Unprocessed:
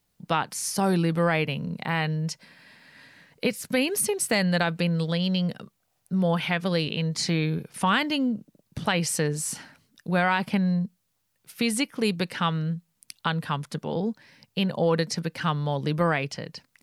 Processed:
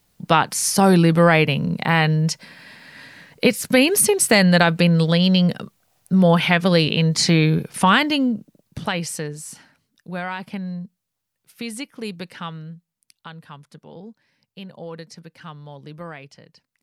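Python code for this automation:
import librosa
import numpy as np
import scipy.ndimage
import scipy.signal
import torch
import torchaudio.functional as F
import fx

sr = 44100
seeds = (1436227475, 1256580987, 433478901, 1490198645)

y = fx.gain(x, sr, db=fx.line((7.67, 9.0), (8.8, 2.0), (9.44, -5.5), (12.35, -5.5), (13.14, -12.0)))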